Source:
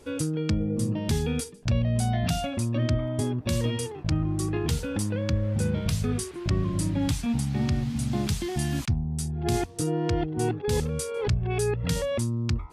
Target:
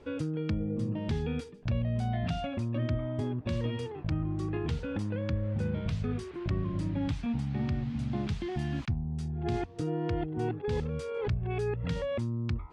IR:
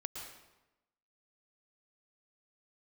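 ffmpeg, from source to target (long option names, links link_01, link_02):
-filter_complex "[0:a]lowpass=3000,asplit=2[link_01][link_02];[link_02]acompressor=threshold=-33dB:ratio=6,volume=1dB[link_03];[link_01][link_03]amix=inputs=2:normalize=0,volume=-8dB"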